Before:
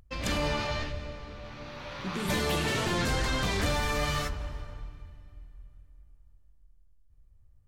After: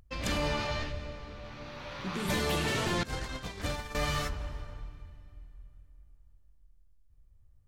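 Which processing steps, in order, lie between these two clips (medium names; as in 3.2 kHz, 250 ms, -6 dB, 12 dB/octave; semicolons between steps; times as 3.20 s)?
3.03–3.95 s: gate -26 dBFS, range -18 dB; trim -1.5 dB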